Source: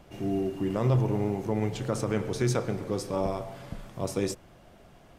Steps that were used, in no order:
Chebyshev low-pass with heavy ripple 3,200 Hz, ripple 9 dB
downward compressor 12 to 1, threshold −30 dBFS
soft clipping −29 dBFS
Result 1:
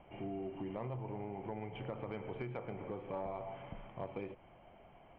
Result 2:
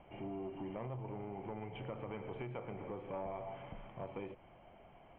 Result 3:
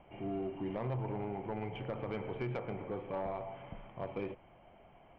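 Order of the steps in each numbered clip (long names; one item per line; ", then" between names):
downward compressor, then Chebyshev low-pass with heavy ripple, then soft clipping
downward compressor, then soft clipping, then Chebyshev low-pass with heavy ripple
Chebyshev low-pass with heavy ripple, then downward compressor, then soft clipping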